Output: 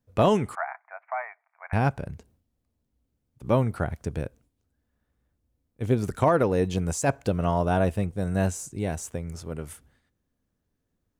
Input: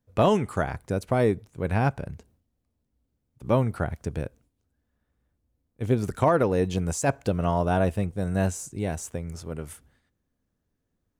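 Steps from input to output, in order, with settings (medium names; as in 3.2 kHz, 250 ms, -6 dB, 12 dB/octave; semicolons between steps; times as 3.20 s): 0.55–1.73 s: Chebyshev band-pass 670–2300 Hz, order 5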